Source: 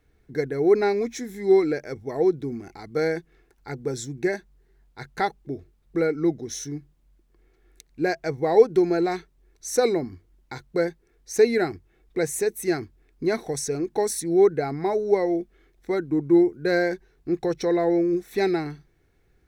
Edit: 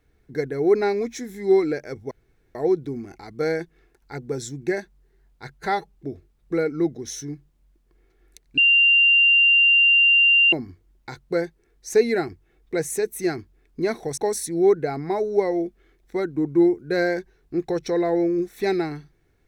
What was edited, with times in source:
2.11 insert room tone 0.44 s
5.14–5.39 stretch 1.5×
8.01–9.96 bleep 2780 Hz -12.5 dBFS
13.61–13.92 cut

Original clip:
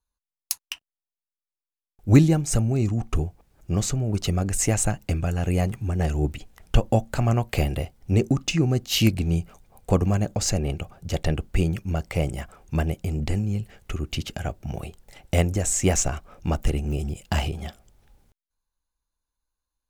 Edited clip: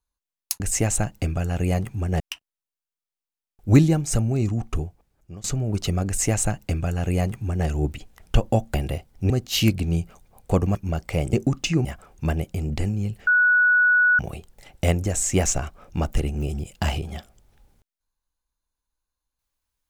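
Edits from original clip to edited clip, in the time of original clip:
2.96–3.84 fade out linear, to -21.5 dB
4.47–6.07 copy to 0.6
7.14–7.61 cut
8.17–8.69 move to 12.35
10.14–11.77 cut
13.77–14.69 bleep 1470 Hz -14 dBFS

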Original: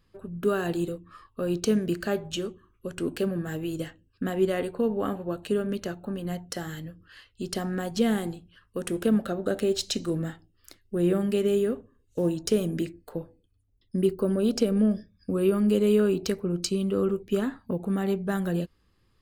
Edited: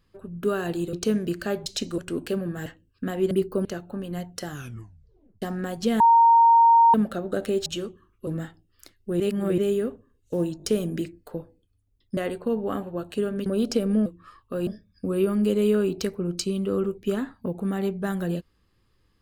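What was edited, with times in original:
0.93–1.54 move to 14.92
2.27–2.88 swap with 9.8–10.12
3.56–3.85 cut
4.5–5.79 swap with 13.98–14.32
6.62 tape stop 0.94 s
8.14–9.08 bleep 925 Hz -12 dBFS
11.05–11.43 reverse
12.43 stutter 0.02 s, 3 plays

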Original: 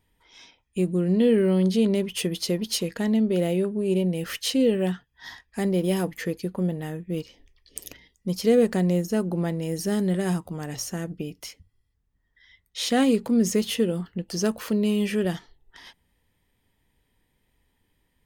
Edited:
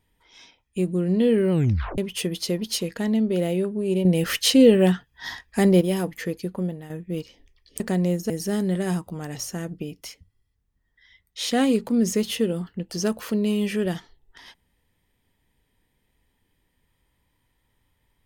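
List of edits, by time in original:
1.51 tape stop 0.47 s
4.05–5.81 gain +7 dB
6.56–6.9 fade out, to -10.5 dB
7.8–8.65 cut
9.15–9.69 cut

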